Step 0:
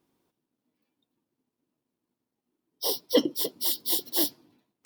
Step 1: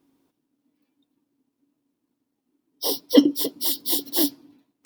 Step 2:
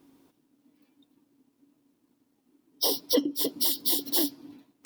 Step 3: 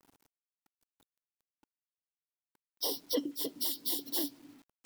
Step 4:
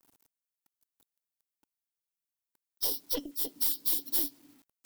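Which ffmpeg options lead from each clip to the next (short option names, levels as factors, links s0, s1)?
-af "equalizer=f=280:w=7.6:g=14.5,volume=1.41"
-af "acompressor=threshold=0.0355:ratio=8,volume=2.11"
-af "acrusher=bits=8:mix=0:aa=0.000001,volume=0.398"
-af "aeval=exprs='0.133*(cos(1*acos(clip(val(0)/0.133,-1,1)))-cos(1*PI/2))+0.0668*(cos(2*acos(clip(val(0)/0.133,-1,1)))-cos(2*PI/2))':c=same,crystalizer=i=1.5:c=0,volume=0.562"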